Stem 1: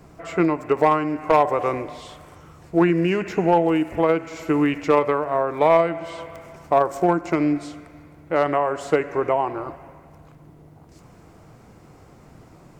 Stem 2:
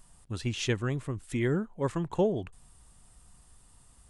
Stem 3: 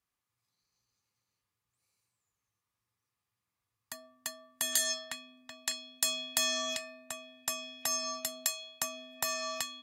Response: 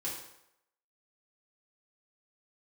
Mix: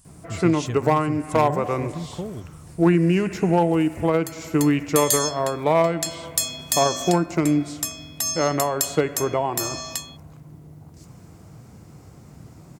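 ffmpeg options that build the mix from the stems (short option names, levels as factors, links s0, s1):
-filter_complex "[0:a]adelay=50,volume=0.708[s0];[1:a]acompressor=threshold=0.0178:ratio=2,volume=0.75[s1];[2:a]adelay=350,volume=1[s2];[s0][s1][s2]amix=inputs=3:normalize=0,highpass=69,bass=f=250:g=10,treble=f=4000:g=9"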